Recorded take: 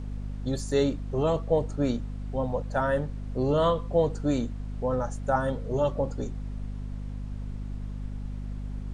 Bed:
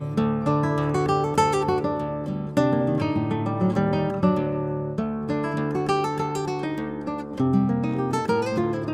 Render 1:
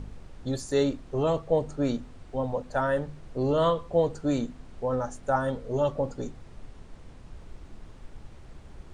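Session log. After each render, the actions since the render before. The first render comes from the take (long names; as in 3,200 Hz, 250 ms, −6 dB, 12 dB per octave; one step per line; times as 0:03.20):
hum removal 50 Hz, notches 5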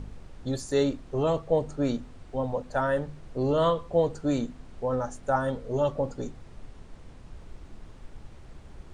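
no processing that can be heard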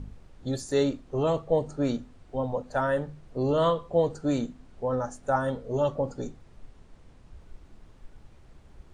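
noise reduction from a noise print 6 dB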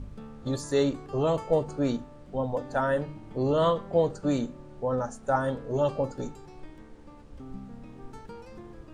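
mix in bed −22 dB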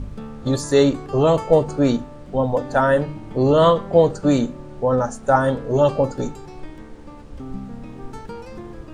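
level +9.5 dB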